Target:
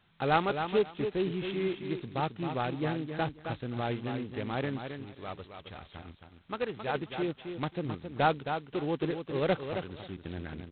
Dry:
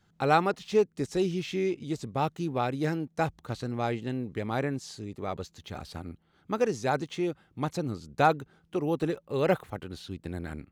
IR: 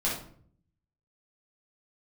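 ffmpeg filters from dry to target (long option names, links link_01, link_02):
-filter_complex "[0:a]asettb=1/sr,asplit=3[link_01][link_02][link_03];[link_01]atrim=end=4.794[link_04];[link_02]atrim=start=4.79:end=6.95,asetpts=PTS-STARTPTS,afade=type=in:duration=0.004:curve=qsin,afade=type=out:start_time=2.156:duration=0.004:curve=qsin,equalizer=frequency=230:width=0.38:gain=-6[link_05];[link_03]atrim=start=6.946[link_06];[link_04][link_05]acrossfade=duration=0.004:curve1=hsin:curve2=qsin[link_07];[link_07][link_06]acrossfade=duration=0.004:curve1=qsin:curve2=hsin,aecho=1:1:268|536|804:0.422|0.0759|0.0137,volume=-3.5dB" -ar 8000 -c:a adpcm_g726 -b:a 16k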